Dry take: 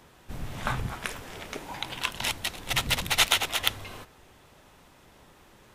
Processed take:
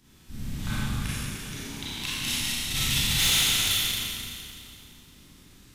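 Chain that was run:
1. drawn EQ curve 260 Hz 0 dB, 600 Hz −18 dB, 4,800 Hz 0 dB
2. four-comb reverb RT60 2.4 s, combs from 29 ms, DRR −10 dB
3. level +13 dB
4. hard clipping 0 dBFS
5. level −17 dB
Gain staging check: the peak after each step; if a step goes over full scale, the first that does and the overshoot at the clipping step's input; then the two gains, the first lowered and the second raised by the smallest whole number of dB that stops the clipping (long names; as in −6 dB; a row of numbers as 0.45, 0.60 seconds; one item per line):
−4.5, −5.0, +8.0, 0.0, −17.0 dBFS
step 3, 8.0 dB
step 3 +5 dB, step 5 −9 dB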